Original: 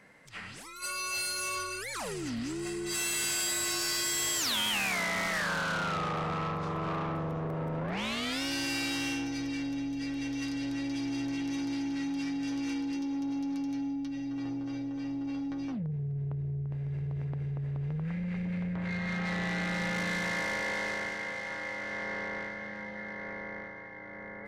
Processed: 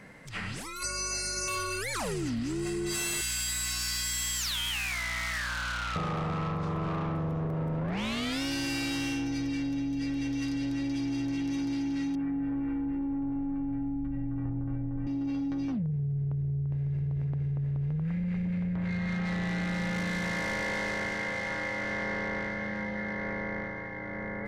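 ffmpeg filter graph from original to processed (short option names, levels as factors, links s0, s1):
-filter_complex "[0:a]asettb=1/sr,asplit=3[s0][s1][s2];[s0]atrim=end=0.834[s3];[s1]atrim=start=0.83:end=1.48,asetpts=PTS-STARTPTS,afade=t=in:d=0.004:c=qsin,afade=t=out:st=0.646:d=0.004:c=qsin,asuperstop=centerf=3300:order=4:qfactor=1.4,highpass=140,equalizer=f=830:t=q:w=4:g=-4,equalizer=f=1200:t=q:w=4:g=-8,equalizer=f=5500:t=q:w=4:g=9,lowpass=f=9300:w=0.5412,lowpass=f=9300:w=1.3066,aeval=exprs='val(0)+0.00178*(sin(2*PI*50*n/s)+sin(2*PI*2*50*n/s)/2+sin(2*PI*3*50*n/s)/3+sin(2*PI*4*50*n/s)/4+sin(2*PI*5*50*n/s)/5)':c=same[s4];[s2]atrim=start=1.476[s5];[s3][s4]acrossfade=d=0.004:c1=hsin:c2=qsin[s6];[s6][s5]acrossfade=d=0.004:c1=qsin:c2=hsin,asettb=1/sr,asplit=3[s7][s8][s9];[s7]atrim=end=3.214[s10];[s8]atrim=start=3.21:end=5.96,asetpts=PTS-STARTPTS,afade=t=in:d=0.004:c=qsin,afade=t=out:st=2.746:d=0.004:c=qsin,highpass=1400,aeval=exprs='val(0)+0.00398*(sin(2*PI*60*n/s)+sin(2*PI*2*60*n/s)/2+sin(2*PI*3*60*n/s)/3+sin(2*PI*4*60*n/s)/4+sin(2*PI*5*60*n/s)/5)':c=same,aeval=exprs='clip(val(0),-1,0.0422)':c=same[s11];[s9]atrim=start=5.956[s12];[s10][s11]acrossfade=d=0.004:c1=hsin:c2=qsin[s13];[s13][s12]acrossfade=d=0.004:c1=qsin:c2=hsin,asettb=1/sr,asplit=3[s14][s15][s16];[s14]atrim=end=12.154[s17];[s15]atrim=start=12.15:end=15.07,asetpts=PTS-STARTPTS,afade=t=in:d=0.004:c=qsin,afade=t=out:st=2.916:d=0.004:c=qsin,asubboost=boost=8:cutoff=110,lowpass=f=1700:w=0.5412,lowpass=f=1700:w=1.3066[s18];[s16]atrim=start=15.066[s19];[s17][s18]acrossfade=d=0.004:c1=hsin:c2=qsin[s20];[s20][s19]acrossfade=d=0.004:c1=qsin:c2=hsin,lowshelf=f=230:g=9.5,acompressor=threshold=0.0178:ratio=6,volume=1.88"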